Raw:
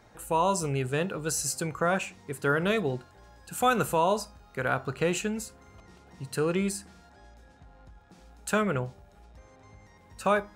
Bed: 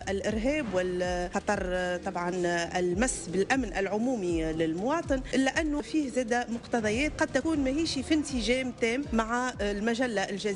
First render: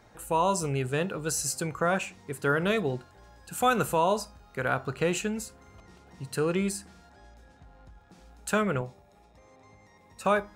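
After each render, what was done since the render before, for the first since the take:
0:08.81–0:10.25: notch comb filter 1,500 Hz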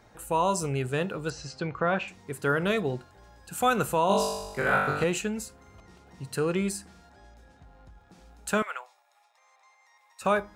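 0:01.30–0:02.08: low-pass filter 4,400 Hz 24 dB per octave
0:04.07–0:05.04: flutter between parallel walls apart 3.5 metres, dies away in 0.99 s
0:08.62–0:10.22: high-pass filter 840 Hz 24 dB per octave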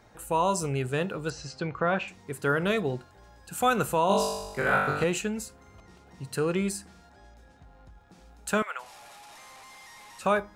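0:08.79–0:10.25: linear delta modulator 64 kbit/s, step −43 dBFS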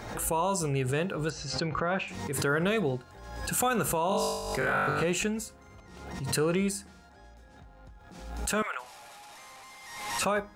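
brickwall limiter −18.5 dBFS, peak gain reduction 7 dB
background raised ahead of every attack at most 50 dB per second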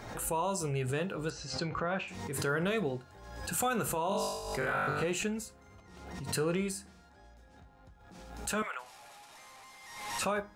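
flanger 0.22 Hz, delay 7.3 ms, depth 5.5 ms, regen −70%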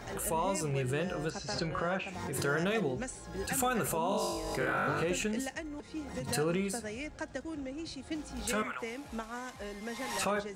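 mix in bed −12.5 dB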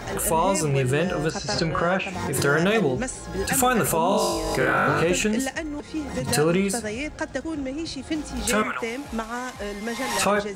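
level +10.5 dB

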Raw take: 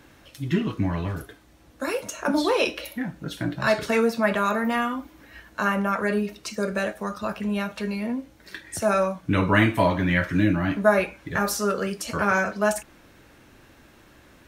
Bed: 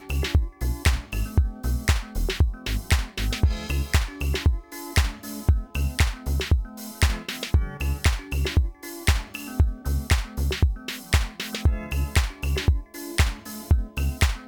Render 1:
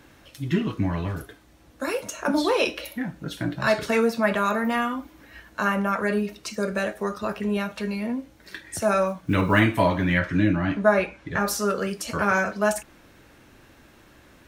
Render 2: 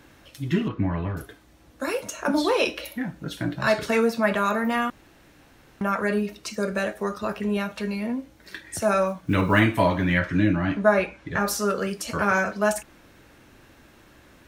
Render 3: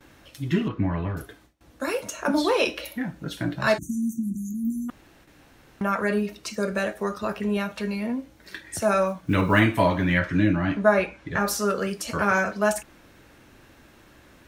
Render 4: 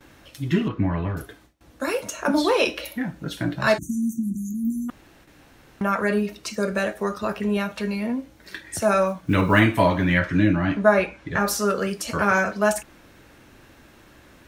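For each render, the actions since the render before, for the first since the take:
0:06.92–0:07.57: hollow resonant body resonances 400/1,900 Hz, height 8 dB; 0:09.06–0:09.60: one scale factor per block 7 bits; 0:10.19–0:11.48: high-frequency loss of the air 51 metres
0:00.68–0:01.17: low-pass filter 2,300 Hz; 0:04.90–0:05.81: fill with room tone
0:03.78–0:04.89: time-frequency box erased 350–5,800 Hz; noise gate with hold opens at −45 dBFS
level +2 dB

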